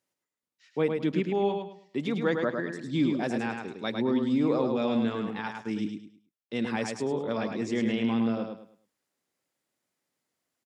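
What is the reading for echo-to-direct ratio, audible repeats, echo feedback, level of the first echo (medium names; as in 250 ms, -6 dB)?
-4.5 dB, 3, 29%, -5.0 dB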